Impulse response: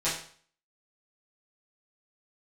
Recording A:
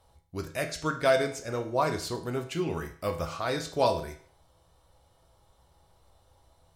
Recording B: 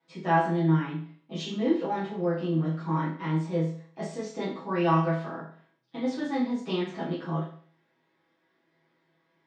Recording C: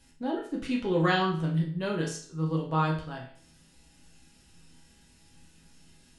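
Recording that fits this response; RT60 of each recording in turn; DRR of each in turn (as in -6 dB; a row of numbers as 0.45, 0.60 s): B; 0.50, 0.50, 0.50 s; 3.5, -11.0, -3.0 dB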